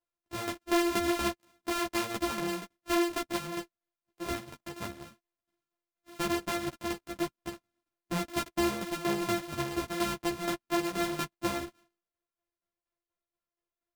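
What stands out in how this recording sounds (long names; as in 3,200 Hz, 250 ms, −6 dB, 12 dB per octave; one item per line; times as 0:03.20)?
a buzz of ramps at a fixed pitch in blocks of 128 samples
tremolo saw down 4.2 Hz, depth 70%
a shimmering, thickened sound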